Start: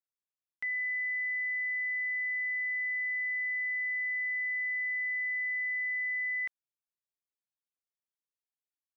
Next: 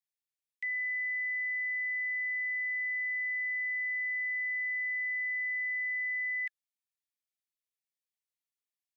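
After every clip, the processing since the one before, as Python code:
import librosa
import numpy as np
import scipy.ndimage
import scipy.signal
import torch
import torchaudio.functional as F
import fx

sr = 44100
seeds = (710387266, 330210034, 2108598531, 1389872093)

y = scipy.signal.sosfilt(scipy.signal.cheby1(10, 1.0, 1700.0, 'highpass', fs=sr, output='sos'), x)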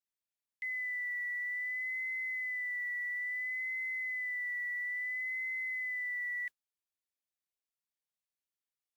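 y = fx.vibrato(x, sr, rate_hz=0.59, depth_cents=37.0)
y = fx.mod_noise(y, sr, seeds[0], snr_db=33)
y = F.gain(torch.from_numpy(y), -3.5).numpy()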